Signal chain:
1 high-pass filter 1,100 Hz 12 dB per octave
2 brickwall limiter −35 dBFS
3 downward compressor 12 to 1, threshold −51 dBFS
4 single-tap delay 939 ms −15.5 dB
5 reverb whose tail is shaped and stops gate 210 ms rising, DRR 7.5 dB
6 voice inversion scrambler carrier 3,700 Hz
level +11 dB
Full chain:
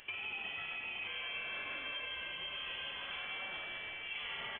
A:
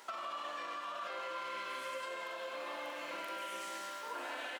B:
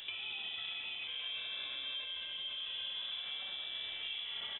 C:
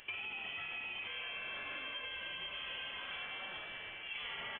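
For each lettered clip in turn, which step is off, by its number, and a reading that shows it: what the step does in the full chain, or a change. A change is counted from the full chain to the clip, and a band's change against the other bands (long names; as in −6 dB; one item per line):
6, 4 kHz band −14.5 dB
1, 4 kHz band +13.5 dB
5, change in integrated loudness −1.5 LU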